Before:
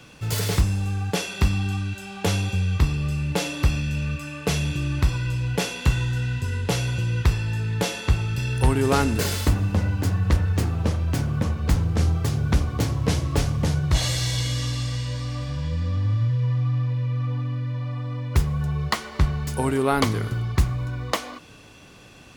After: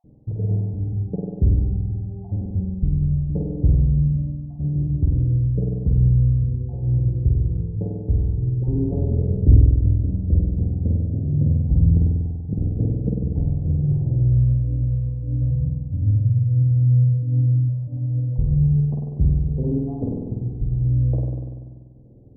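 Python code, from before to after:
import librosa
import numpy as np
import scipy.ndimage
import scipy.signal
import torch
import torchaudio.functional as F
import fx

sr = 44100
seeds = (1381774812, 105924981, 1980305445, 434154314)

y = fx.spec_dropout(x, sr, seeds[0], share_pct=39)
y = fx.rider(y, sr, range_db=10, speed_s=2.0)
y = scipy.ndimage.gaussian_filter1d(y, 20.0, mode='constant')
y = fx.low_shelf(y, sr, hz=220.0, db=10.5, at=(9.3, 9.88))
y = y + 10.0 ** (-14.0 / 20.0) * np.pad(y, (int(128 * sr / 1000.0), 0))[:len(y)]
y = fx.rev_spring(y, sr, rt60_s=1.6, pass_ms=(48,), chirp_ms=50, drr_db=-2.5)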